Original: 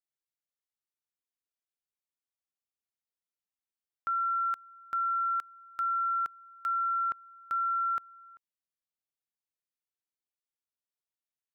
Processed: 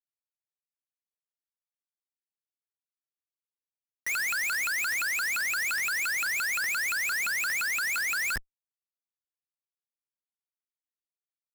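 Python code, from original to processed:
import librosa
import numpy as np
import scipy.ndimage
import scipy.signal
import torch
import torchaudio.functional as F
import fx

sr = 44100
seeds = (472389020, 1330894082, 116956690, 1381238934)

y = fx.pitch_ramps(x, sr, semitones=11.5, every_ms=173)
y = fx.schmitt(y, sr, flips_db=-52.5)
y = y * 10.0 ** (8.0 / 20.0)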